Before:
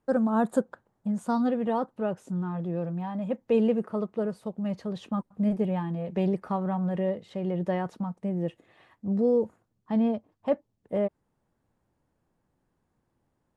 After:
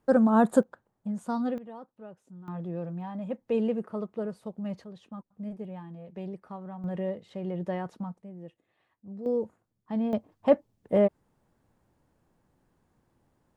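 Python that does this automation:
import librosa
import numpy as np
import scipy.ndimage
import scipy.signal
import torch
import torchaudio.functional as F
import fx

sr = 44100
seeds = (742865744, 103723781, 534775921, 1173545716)

y = fx.gain(x, sr, db=fx.steps((0.0, 3.5), (0.63, -4.0), (1.58, -16.5), (2.48, -4.0), (4.84, -12.0), (6.84, -4.0), (8.22, -14.5), (9.26, -4.5), (10.13, 5.0)))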